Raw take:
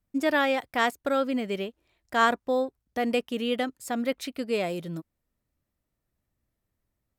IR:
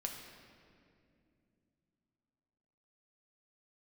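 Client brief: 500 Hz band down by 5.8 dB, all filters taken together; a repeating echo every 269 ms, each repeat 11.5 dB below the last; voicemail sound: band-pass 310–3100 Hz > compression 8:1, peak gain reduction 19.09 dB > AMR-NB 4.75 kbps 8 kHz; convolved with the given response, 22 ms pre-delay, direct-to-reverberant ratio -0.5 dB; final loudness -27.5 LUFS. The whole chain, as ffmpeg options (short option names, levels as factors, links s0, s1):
-filter_complex "[0:a]equalizer=f=500:t=o:g=-6,aecho=1:1:269|538|807:0.266|0.0718|0.0194,asplit=2[s0][s1];[1:a]atrim=start_sample=2205,adelay=22[s2];[s1][s2]afir=irnorm=-1:irlink=0,volume=1.12[s3];[s0][s3]amix=inputs=2:normalize=0,highpass=310,lowpass=3100,acompressor=threshold=0.0224:ratio=8,volume=4.22" -ar 8000 -c:a libopencore_amrnb -b:a 4750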